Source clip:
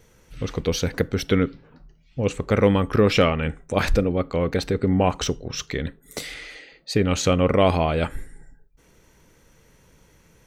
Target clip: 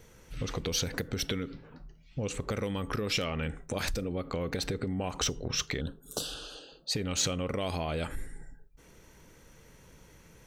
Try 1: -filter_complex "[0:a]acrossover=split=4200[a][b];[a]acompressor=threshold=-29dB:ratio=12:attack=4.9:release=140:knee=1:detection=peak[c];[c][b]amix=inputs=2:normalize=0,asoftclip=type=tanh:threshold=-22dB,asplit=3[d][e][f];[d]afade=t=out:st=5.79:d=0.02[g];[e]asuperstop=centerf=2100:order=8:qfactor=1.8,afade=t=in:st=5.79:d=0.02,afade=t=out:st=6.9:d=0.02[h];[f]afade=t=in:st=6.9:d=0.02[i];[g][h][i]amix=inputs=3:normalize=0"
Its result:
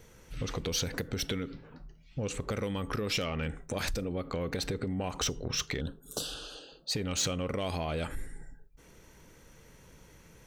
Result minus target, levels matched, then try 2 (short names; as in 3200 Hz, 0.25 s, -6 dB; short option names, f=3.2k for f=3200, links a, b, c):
soft clip: distortion +12 dB
-filter_complex "[0:a]acrossover=split=4200[a][b];[a]acompressor=threshold=-29dB:ratio=12:attack=4.9:release=140:knee=1:detection=peak[c];[c][b]amix=inputs=2:normalize=0,asoftclip=type=tanh:threshold=-14.5dB,asplit=3[d][e][f];[d]afade=t=out:st=5.79:d=0.02[g];[e]asuperstop=centerf=2100:order=8:qfactor=1.8,afade=t=in:st=5.79:d=0.02,afade=t=out:st=6.9:d=0.02[h];[f]afade=t=in:st=6.9:d=0.02[i];[g][h][i]amix=inputs=3:normalize=0"